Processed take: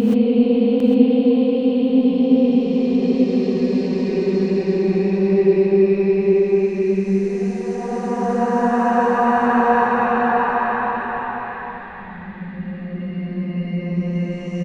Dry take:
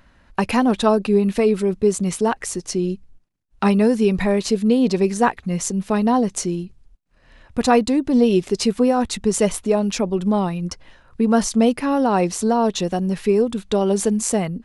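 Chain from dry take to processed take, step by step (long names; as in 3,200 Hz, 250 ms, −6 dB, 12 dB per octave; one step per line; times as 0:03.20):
low-pass filter 2,700 Hz 12 dB per octave
extreme stretch with random phases 17×, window 0.25 s, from 0:04.69
on a send: single-tap delay 803 ms −9 dB
on the sum: reverb whose tail is shaped and stops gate 150 ms rising, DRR 1 dB
level −2.5 dB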